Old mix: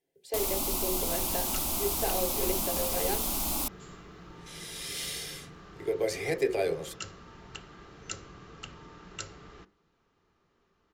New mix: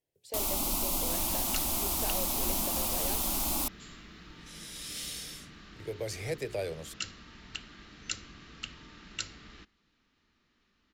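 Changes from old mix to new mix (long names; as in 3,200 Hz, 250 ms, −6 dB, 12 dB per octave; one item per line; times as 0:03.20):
second sound: add graphic EQ with 10 bands 125 Hz −8 dB, 250 Hz +5 dB, 500 Hz −7 dB, 1,000 Hz −4 dB, 2,000 Hz +6 dB, 4,000 Hz +7 dB
reverb: off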